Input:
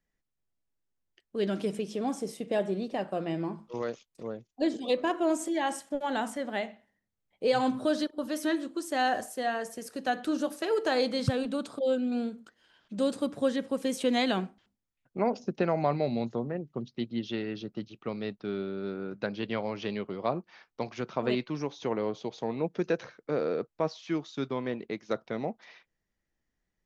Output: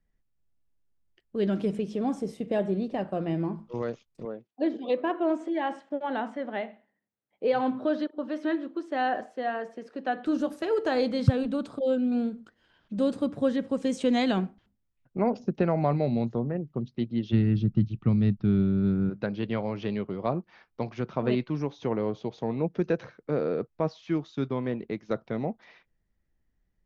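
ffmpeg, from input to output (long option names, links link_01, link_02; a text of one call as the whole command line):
ffmpeg -i in.wav -filter_complex "[0:a]asettb=1/sr,asplit=3[link_01][link_02][link_03];[link_01]atrim=end=4.254[link_04];[link_02]atrim=start=4.25:end=10.26,asetpts=PTS-STARTPTS,afade=type=in:duration=0.004:curve=qsin,afade=type=out:start_time=6.006:duration=0.004:curve=qsin,highpass=270,lowpass=3300[link_05];[link_03]atrim=start=10.256[link_06];[link_04][link_05]acrossfade=duration=0.004:curve1=hsin:curve2=qsin[link_07];[link_07][link_06]acrossfade=duration=0.004:curve1=qsin:curve2=hsin,asettb=1/sr,asplit=3[link_08][link_09][link_10];[link_08]atrim=end=13.694[link_11];[link_09]atrim=start=13.69:end=14.39,asetpts=PTS-STARTPTS,afade=type=in:duration=0.004:curve=qsin,afade=type=out:start_time=0.696:duration=0.004:curve=qsin,lowpass=frequency=7600:width_type=q:width=2[link_12];[link_10]atrim=start=14.386[link_13];[link_11][link_12]acrossfade=duration=0.004:curve1=hsin:curve2=qsin[link_14];[link_14][link_13]acrossfade=duration=0.004:curve1=qsin:curve2=hsin,asplit=3[link_15][link_16][link_17];[link_15]afade=type=out:start_time=17.32:duration=0.02[link_18];[link_16]asubboost=boost=8:cutoff=170,afade=type=in:start_time=17.32:duration=0.02,afade=type=out:start_time=19.09:duration=0.02[link_19];[link_17]afade=type=in:start_time=19.09:duration=0.02[link_20];[link_18][link_19][link_20]amix=inputs=3:normalize=0,lowpass=frequency=2900:poles=1,lowshelf=frequency=180:gain=11.5" out.wav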